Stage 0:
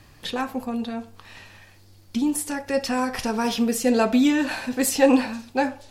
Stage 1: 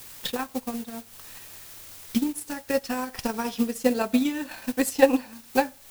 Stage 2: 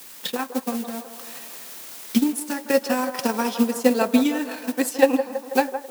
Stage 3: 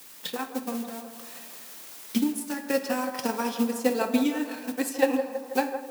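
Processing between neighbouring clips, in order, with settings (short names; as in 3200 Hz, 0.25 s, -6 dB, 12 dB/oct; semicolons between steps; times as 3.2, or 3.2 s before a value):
added noise white -39 dBFS; transient shaper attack +11 dB, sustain -8 dB; high shelf 9000 Hz +4 dB; gain -8 dB
AGC gain up to 4 dB; HPF 170 Hz 24 dB/oct; band-limited delay 0.163 s, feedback 62%, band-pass 750 Hz, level -9 dB; gain +1.5 dB
shoebox room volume 420 m³, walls mixed, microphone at 0.46 m; gain -5.5 dB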